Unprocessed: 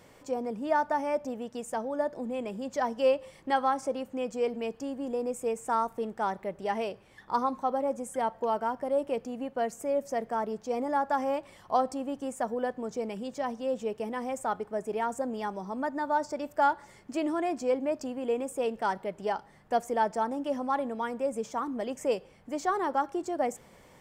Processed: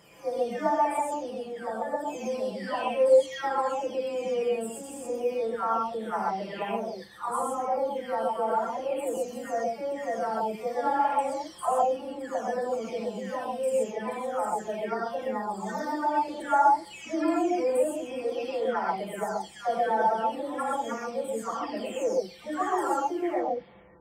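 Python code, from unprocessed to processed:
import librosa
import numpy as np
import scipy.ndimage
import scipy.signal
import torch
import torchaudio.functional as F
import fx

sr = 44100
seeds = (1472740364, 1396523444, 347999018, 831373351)

y = fx.spec_delay(x, sr, highs='early', ms=733)
y = scipy.signal.sosfilt(scipy.signal.butter(2, 46.0, 'highpass', fs=sr, output='sos'), y)
y = fx.rev_gated(y, sr, seeds[0], gate_ms=150, shape='rising', drr_db=-2.0)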